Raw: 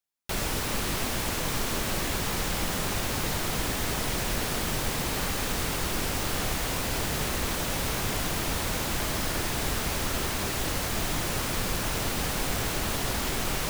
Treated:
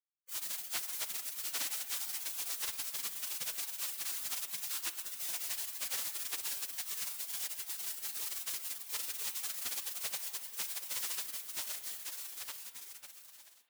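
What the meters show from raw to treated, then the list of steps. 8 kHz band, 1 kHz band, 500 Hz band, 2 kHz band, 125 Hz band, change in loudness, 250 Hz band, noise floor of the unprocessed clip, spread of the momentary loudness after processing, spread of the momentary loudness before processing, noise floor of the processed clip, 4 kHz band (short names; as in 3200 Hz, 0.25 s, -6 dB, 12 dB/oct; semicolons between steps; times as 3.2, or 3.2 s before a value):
-6.5 dB, -20.5 dB, -26.5 dB, -15.0 dB, under -35 dB, -8.0 dB, -32.5 dB, -31 dBFS, 6 LU, 0 LU, -57 dBFS, -10.5 dB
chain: ending faded out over 2.57 s; spectral gate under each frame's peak -25 dB weak; spring tank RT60 2.3 s, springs 31/56 ms, chirp 20 ms, DRR 11.5 dB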